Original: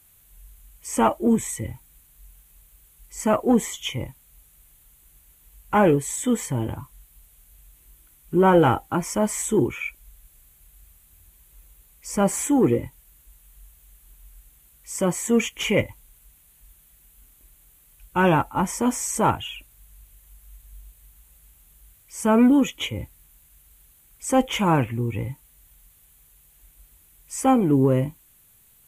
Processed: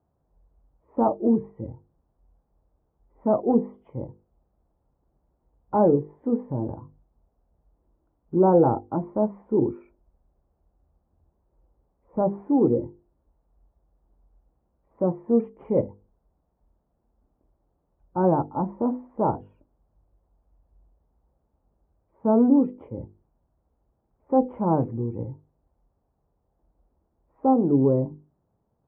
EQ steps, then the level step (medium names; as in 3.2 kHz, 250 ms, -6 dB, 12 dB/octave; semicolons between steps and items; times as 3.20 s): high-pass 170 Hz 6 dB/octave; inverse Chebyshev low-pass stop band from 4.7 kHz, stop band 80 dB; hum notches 50/100/150/200/250/300/350/400/450/500 Hz; +1.0 dB